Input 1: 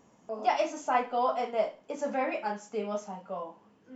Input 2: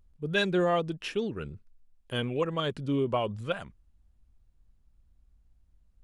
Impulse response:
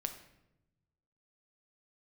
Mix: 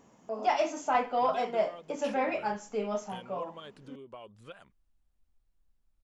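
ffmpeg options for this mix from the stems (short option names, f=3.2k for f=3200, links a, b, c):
-filter_complex "[0:a]volume=1dB[a];[1:a]acompressor=threshold=-37dB:ratio=12,equalizer=f=76:w=0.39:g=-12,adelay=1000,volume=-4dB[b];[a][b]amix=inputs=2:normalize=0,asoftclip=type=tanh:threshold=-15.5dB"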